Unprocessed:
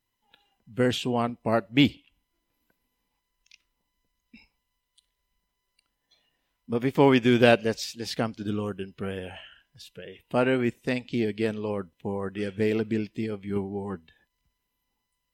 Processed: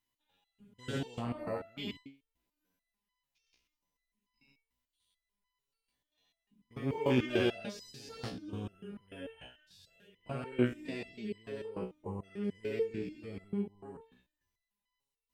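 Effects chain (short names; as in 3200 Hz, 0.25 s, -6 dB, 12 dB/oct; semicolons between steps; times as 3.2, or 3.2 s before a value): stepped spectrum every 0.2 s; LFO notch saw up 9.6 Hz 400–2600 Hz; stepped resonator 6.8 Hz 62–1000 Hz; gain +4.5 dB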